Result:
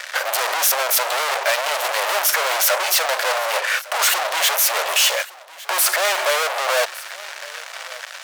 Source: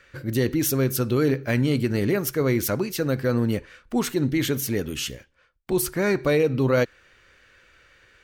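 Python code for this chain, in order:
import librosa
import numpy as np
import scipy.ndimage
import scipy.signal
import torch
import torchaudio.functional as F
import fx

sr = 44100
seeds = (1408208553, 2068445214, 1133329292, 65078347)

p1 = fx.fuzz(x, sr, gain_db=47.0, gate_db=-53.0)
p2 = scipy.signal.sosfilt(scipy.signal.ellip(4, 1.0, 60, 590.0, 'highpass', fs=sr, output='sos'), p1)
y = p2 + fx.echo_single(p2, sr, ms=1158, db=-20.0, dry=0)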